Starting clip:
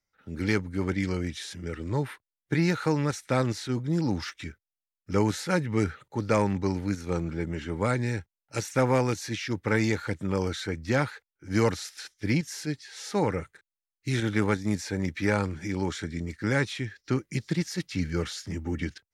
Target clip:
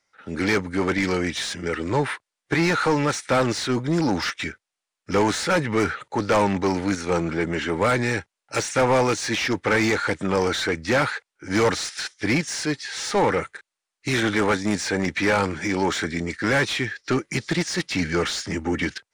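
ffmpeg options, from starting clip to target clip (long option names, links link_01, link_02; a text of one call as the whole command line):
ffmpeg -i in.wav -filter_complex "[0:a]highshelf=frequency=6200:gain=10.5,aresample=22050,aresample=44100,asplit=2[link_01][link_02];[link_02]highpass=frequency=720:poles=1,volume=23dB,asoftclip=type=tanh:threshold=-10dB[link_03];[link_01][link_03]amix=inputs=2:normalize=0,lowpass=frequency=1900:poles=1,volume=-6dB" out.wav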